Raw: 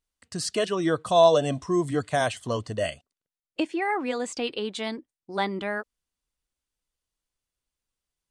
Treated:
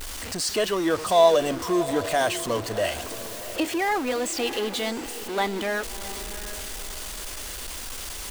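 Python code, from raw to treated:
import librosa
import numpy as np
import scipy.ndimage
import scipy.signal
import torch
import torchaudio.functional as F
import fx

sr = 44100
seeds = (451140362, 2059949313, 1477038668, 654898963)

y = x + 0.5 * 10.0 ** (-27.5 / 20.0) * np.sign(x)
y = fx.peak_eq(y, sr, hz=140.0, db=-12.0, octaves=0.88)
y = fx.echo_diffused(y, sr, ms=682, feedback_pct=41, wet_db=-13)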